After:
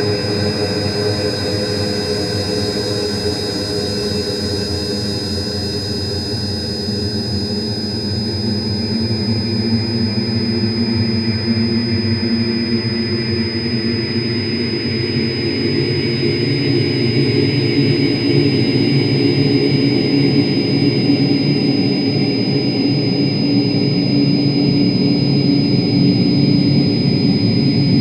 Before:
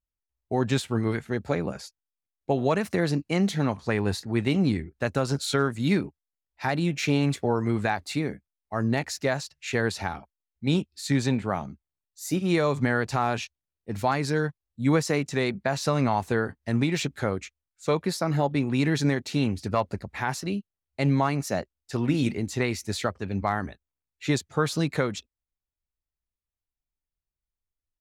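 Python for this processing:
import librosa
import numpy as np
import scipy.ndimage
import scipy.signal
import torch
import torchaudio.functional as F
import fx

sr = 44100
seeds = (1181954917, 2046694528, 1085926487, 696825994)

p1 = fx.room_shoebox(x, sr, seeds[0], volume_m3=290.0, walls='mixed', distance_m=4.0)
p2 = 10.0 ** (-7.0 / 20.0) * (np.abs((p1 / 10.0 ** (-7.0 / 20.0) + 3.0) % 4.0 - 2.0) - 1.0)
p3 = p1 + (p2 * 10.0 ** (-12.0 / 20.0))
p4 = fx.paulstretch(p3, sr, seeds[1], factor=45.0, window_s=0.25, from_s=4.12)
p5 = p4 + 10.0 ** (-18.0 / 20.0) * np.sin(2.0 * np.pi * 5000.0 * np.arange(len(p4)) / sr)
y = p5 * 10.0 ** (-5.5 / 20.0)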